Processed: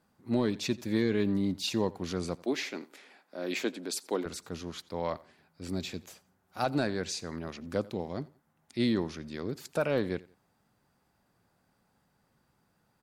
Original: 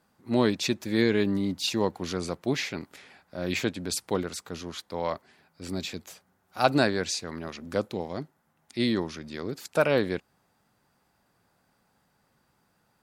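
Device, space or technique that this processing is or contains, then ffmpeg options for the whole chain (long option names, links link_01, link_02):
soft clipper into limiter: -filter_complex "[0:a]asettb=1/sr,asplit=3[link_01][link_02][link_03];[link_01]atrim=end=2.354[link_04];[link_02]atrim=start=2.35:end=4.26,asetpts=PTS-STARTPTS,afade=type=in:duration=0.004:curve=qsin,afade=type=out:start_time=1.906:duration=0.004:curve=qsin,highpass=frequency=250:width=0.5412,highpass=frequency=250:width=1.3066[link_05];[link_03]atrim=start=4.256[link_06];[link_04][link_05]acrossfade=duration=0.004:curve1=hsin:curve2=qsin[link_07];[link_07][link_06]acrossfade=duration=0.004:curve1=qsin:curve2=hsin,lowshelf=frequency=420:gain=4.5,aecho=1:1:87|174:0.0794|0.0238,asoftclip=type=tanh:threshold=-7.5dB,alimiter=limit=-13dB:level=0:latency=1:release=447,volume=-4.5dB"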